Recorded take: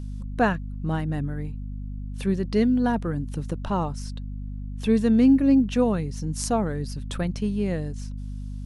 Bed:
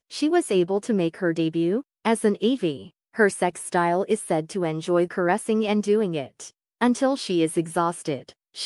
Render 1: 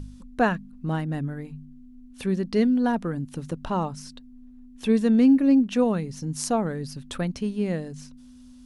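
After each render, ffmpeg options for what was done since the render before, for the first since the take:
ffmpeg -i in.wav -af "bandreject=frequency=50:width_type=h:width=4,bandreject=frequency=100:width_type=h:width=4,bandreject=frequency=150:width_type=h:width=4,bandreject=frequency=200:width_type=h:width=4" out.wav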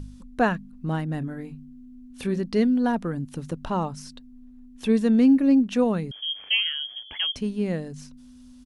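ffmpeg -i in.wav -filter_complex "[0:a]asplit=3[link_01][link_02][link_03];[link_01]afade=type=out:start_time=1.21:duration=0.02[link_04];[link_02]asplit=2[link_05][link_06];[link_06]adelay=24,volume=-8dB[link_07];[link_05][link_07]amix=inputs=2:normalize=0,afade=type=in:start_time=1.21:duration=0.02,afade=type=out:start_time=2.4:duration=0.02[link_08];[link_03]afade=type=in:start_time=2.4:duration=0.02[link_09];[link_04][link_08][link_09]amix=inputs=3:normalize=0,asettb=1/sr,asplit=3[link_10][link_11][link_12];[link_10]atrim=end=6.114[link_13];[link_11]atrim=start=6.11:end=7.36,asetpts=PTS-STARTPTS,afade=type=in:duration=0.004:curve=qsin,afade=type=out:start_time=1.246:duration=0.004:curve=qsin,lowpass=frequency=2900:width_type=q:width=0.5098,lowpass=frequency=2900:width_type=q:width=0.6013,lowpass=frequency=2900:width_type=q:width=0.9,lowpass=frequency=2900:width_type=q:width=2.563,afreqshift=-3400[link_14];[link_12]atrim=start=7.356[link_15];[link_13][link_14]acrossfade=duration=0.004:curve1=hsin:curve2=qsin[link_16];[link_16][link_15]acrossfade=duration=0.004:curve1=qsin:curve2=hsin" out.wav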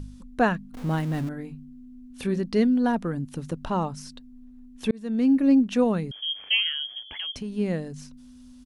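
ffmpeg -i in.wav -filter_complex "[0:a]asettb=1/sr,asplit=3[link_01][link_02][link_03];[link_01]atrim=end=0.744[link_04];[link_02]atrim=start=0.74:end=1.29,asetpts=PTS-STARTPTS,afade=type=in:duration=0.004:curve=qsin,afade=type=out:start_time=0.546:duration=0.004:curve=qsin,aeval=exprs='val(0)+0.5*0.0178*sgn(val(0))':channel_layout=same[link_05];[link_03]atrim=start=1.286[link_06];[link_04][link_05]acrossfade=duration=0.004:curve1=hsin:curve2=qsin[link_07];[link_07][link_06]acrossfade=duration=0.004:curve1=qsin:curve2=hsin,asettb=1/sr,asplit=3[link_08][link_09][link_10];[link_08]atrim=end=7.094[link_11];[link_09]atrim=start=7.09:end=7.53,asetpts=PTS-STARTPTS,afade=type=in:duration=0.004:curve=qsin,afade=type=out:start_time=0.436:duration=0.004:curve=qsin,acompressor=threshold=-29dB:ratio=6:attack=3.2:release=140:knee=1:detection=peak[link_12];[link_10]atrim=start=7.526[link_13];[link_11][link_12]acrossfade=duration=0.004:curve1=hsin:curve2=qsin[link_14];[link_14][link_13]acrossfade=duration=0.004:curve1=qsin:curve2=hsin,asplit=2[link_15][link_16];[link_15]atrim=end=4.91,asetpts=PTS-STARTPTS,afade=type=out:start_time=4.906:duration=0.004:curve=hsin[link_17];[link_16]atrim=start=4.91,asetpts=PTS-STARTPTS,afade=type=in:duration=0.55[link_18];[link_17][link_18]concat=n=2:v=0:a=1" out.wav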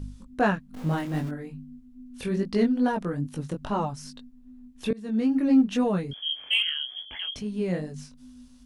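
ffmpeg -i in.wav -filter_complex "[0:a]flanger=delay=19:depth=3.6:speed=2.4,asplit=2[link_01][link_02];[link_02]asoftclip=type=hard:threshold=-21.5dB,volume=-10dB[link_03];[link_01][link_03]amix=inputs=2:normalize=0" out.wav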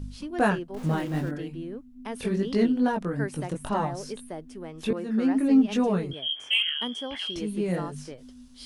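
ffmpeg -i in.wav -i bed.wav -filter_complex "[1:a]volume=-14.5dB[link_01];[0:a][link_01]amix=inputs=2:normalize=0" out.wav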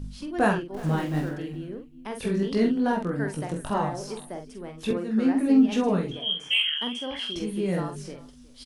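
ffmpeg -i in.wav -filter_complex "[0:a]asplit=2[link_01][link_02];[link_02]adelay=46,volume=-6dB[link_03];[link_01][link_03]amix=inputs=2:normalize=0,aecho=1:1:364:0.0891" out.wav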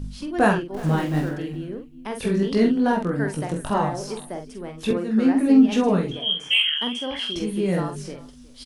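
ffmpeg -i in.wav -af "volume=4dB" out.wav

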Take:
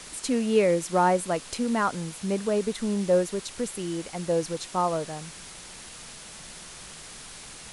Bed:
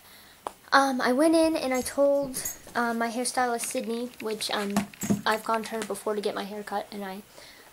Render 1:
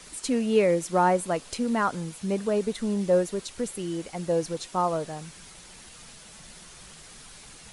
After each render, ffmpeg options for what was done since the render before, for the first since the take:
ffmpeg -i in.wav -af "afftdn=noise_reduction=6:noise_floor=-44" out.wav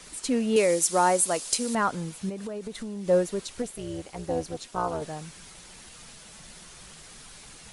ffmpeg -i in.wav -filter_complex "[0:a]asettb=1/sr,asplit=3[link_01][link_02][link_03];[link_01]atrim=end=0.564[link_04];[link_02]atrim=start=0.56:end=1.75,asetpts=PTS-STARTPTS,afade=type=in:duration=0.004:curve=qsin,afade=type=out:start_time=1.186:duration=0.004:curve=qsin,bass=frequency=250:gain=-8,treble=frequency=4000:gain=14[link_05];[link_03]atrim=start=1.746[link_06];[link_04][link_05]acrossfade=duration=0.004:curve1=hsin:curve2=qsin[link_07];[link_07][link_06]acrossfade=duration=0.004:curve1=qsin:curve2=hsin,asettb=1/sr,asplit=3[link_08][link_09][link_10];[link_08]atrim=end=2.294[link_11];[link_09]atrim=start=2.29:end=3.08,asetpts=PTS-STARTPTS,afade=type=in:duration=0.004:curve=qsin,afade=type=out:start_time=0.786:duration=0.004:curve=qsin,acompressor=threshold=-32dB:ratio=6:attack=3.2:release=140:knee=1:detection=peak[link_12];[link_10]atrim=start=3.076[link_13];[link_11][link_12]acrossfade=duration=0.004:curve1=hsin:curve2=qsin[link_14];[link_14][link_13]acrossfade=duration=0.004:curve1=qsin:curve2=hsin,asettb=1/sr,asplit=3[link_15][link_16][link_17];[link_15]atrim=end=3.624[link_18];[link_16]atrim=start=3.62:end=5.02,asetpts=PTS-STARTPTS,afade=type=in:duration=0.004:curve=qsin,afade=type=out:start_time=1.396:duration=0.004:curve=qsin,tremolo=f=240:d=0.824[link_19];[link_17]atrim=start=5.016[link_20];[link_18][link_19]acrossfade=duration=0.004:curve1=hsin:curve2=qsin[link_21];[link_21][link_20]acrossfade=duration=0.004:curve1=qsin:curve2=hsin" out.wav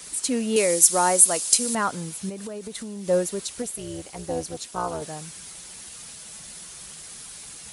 ffmpeg -i in.wav -af "highpass=45,aemphasis=mode=production:type=50kf" out.wav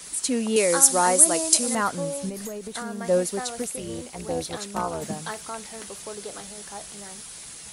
ffmpeg -i in.wav -i bed.wav -filter_complex "[1:a]volume=-9dB[link_01];[0:a][link_01]amix=inputs=2:normalize=0" out.wav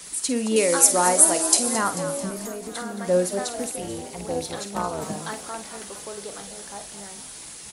ffmpeg -i in.wav -filter_complex "[0:a]asplit=2[link_01][link_02];[link_02]adelay=50,volume=-11dB[link_03];[link_01][link_03]amix=inputs=2:normalize=0,asplit=7[link_04][link_05][link_06][link_07][link_08][link_09][link_10];[link_05]adelay=220,afreqshift=59,volume=-13dB[link_11];[link_06]adelay=440,afreqshift=118,volume=-17.6dB[link_12];[link_07]adelay=660,afreqshift=177,volume=-22.2dB[link_13];[link_08]adelay=880,afreqshift=236,volume=-26.7dB[link_14];[link_09]adelay=1100,afreqshift=295,volume=-31.3dB[link_15];[link_10]adelay=1320,afreqshift=354,volume=-35.9dB[link_16];[link_04][link_11][link_12][link_13][link_14][link_15][link_16]amix=inputs=7:normalize=0" out.wav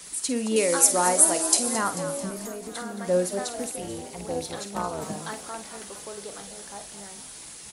ffmpeg -i in.wav -af "volume=-2.5dB" out.wav

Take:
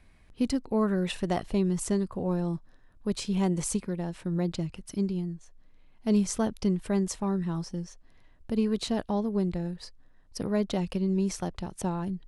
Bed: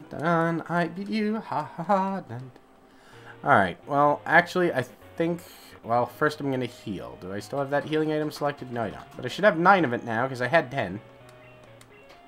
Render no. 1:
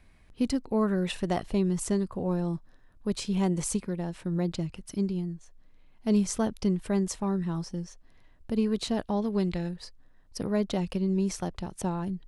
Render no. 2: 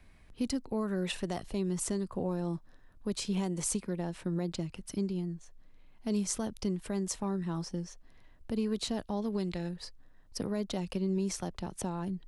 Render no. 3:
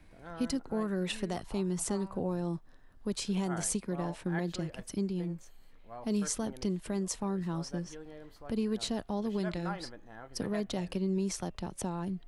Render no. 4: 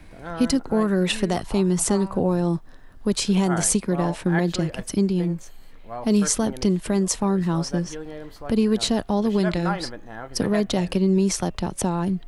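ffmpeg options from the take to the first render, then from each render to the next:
ffmpeg -i in.wav -filter_complex "[0:a]asettb=1/sr,asplit=3[link_01][link_02][link_03];[link_01]atrim=end=9.224[link_04];[link_02]atrim=start=9.22:end=9.69,asetpts=PTS-STARTPTS,afade=type=in:duration=0.004:curve=qsin,afade=type=out:start_time=0.466:duration=0.004:curve=qsin,equalizer=frequency=3200:width_type=o:width=2.3:gain=9.5[link_05];[link_03]atrim=start=9.686[link_06];[link_04][link_05]acrossfade=duration=0.004:curve1=hsin:curve2=qsin[link_07];[link_07][link_06]acrossfade=duration=0.004:curve1=qsin:curve2=hsin" out.wav
ffmpeg -i in.wav -filter_complex "[0:a]acrossover=split=190|4200[link_01][link_02][link_03];[link_01]acompressor=threshold=-41dB:ratio=6[link_04];[link_02]alimiter=level_in=1.5dB:limit=-24dB:level=0:latency=1:release=304,volume=-1.5dB[link_05];[link_04][link_05][link_03]amix=inputs=3:normalize=0" out.wav
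ffmpeg -i in.wav -i bed.wav -filter_complex "[1:a]volume=-22.5dB[link_01];[0:a][link_01]amix=inputs=2:normalize=0" out.wav
ffmpeg -i in.wav -af "volume=12dB" out.wav

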